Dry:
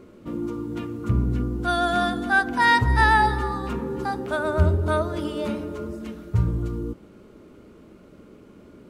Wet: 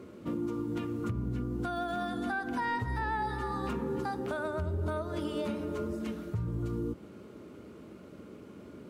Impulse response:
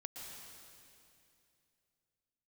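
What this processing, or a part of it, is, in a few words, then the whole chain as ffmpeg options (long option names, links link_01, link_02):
podcast mastering chain: -af "highpass=frequency=69:width=0.5412,highpass=frequency=69:width=1.3066,deesser=1,acompressor=threshold=-31dB:ratio=2,alimiter=limit=-24dB:level=0:latency=1:release=259" -ar 44100 -c:a libmp3lame -b:a 112k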